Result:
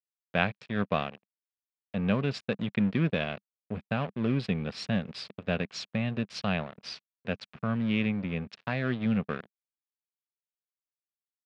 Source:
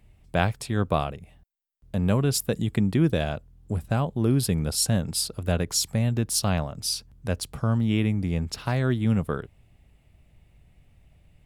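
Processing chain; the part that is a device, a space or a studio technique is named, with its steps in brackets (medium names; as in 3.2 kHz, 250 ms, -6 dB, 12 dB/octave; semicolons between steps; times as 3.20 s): blown loudspeaker (crossover distortion -35 dBFS; cabinet simulation 150–4100 Hz, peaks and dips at 200 Hz +4 dB, 330 Hz -7 dB, 870 Hz -4 dB, 1.7 kHz +3 dB, 2.5 kHz +7 dB); trim -2 dB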